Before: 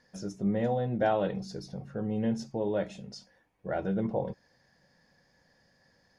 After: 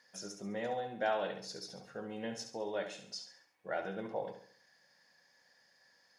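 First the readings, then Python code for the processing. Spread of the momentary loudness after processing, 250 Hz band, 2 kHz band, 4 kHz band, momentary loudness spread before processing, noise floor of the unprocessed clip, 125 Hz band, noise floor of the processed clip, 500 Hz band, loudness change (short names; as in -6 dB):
11 LU, -13.5 dB, -0.5 dB, +2.5 dB, 17 LU, -69 dBFS, -18.0 dB, -70 dBFS, -7.0 dB, -8.0 dB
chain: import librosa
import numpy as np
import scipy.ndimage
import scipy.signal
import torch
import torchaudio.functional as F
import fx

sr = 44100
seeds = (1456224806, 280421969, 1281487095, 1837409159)

p1 = fx.highpass(x, sr, hz=1400.0, slope=6)
p2 = fx.rider(p1, sr, range_db=3, speed_s=0.5)
p3 = p1 + F.gain(torch.from_numpy(p2), -2.0).numpy()
p4 = fx.echo_feedback(p3, sr, ms=69, feedback_pct=42, wet_db=-8.5)
y = F.gain(torch.from_numpy(p4), -3.5).numpy()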